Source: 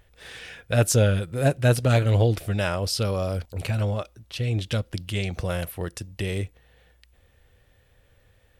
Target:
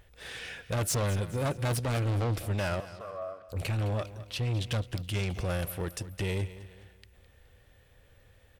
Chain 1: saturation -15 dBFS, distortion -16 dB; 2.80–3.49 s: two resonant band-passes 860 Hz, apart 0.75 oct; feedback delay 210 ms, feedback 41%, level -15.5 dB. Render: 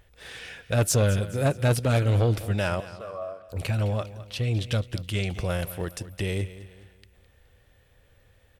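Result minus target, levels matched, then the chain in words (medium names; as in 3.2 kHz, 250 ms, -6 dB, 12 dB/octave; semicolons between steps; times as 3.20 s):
saturation: distortion -10 dB
saturation -26.5 dBFS, distortion -6 dB; 2.80–3.49 s: two resonant band-passes 860 Hz, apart 0.75 oct; feedback delay 210 ms, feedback 41%, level -15.5 dB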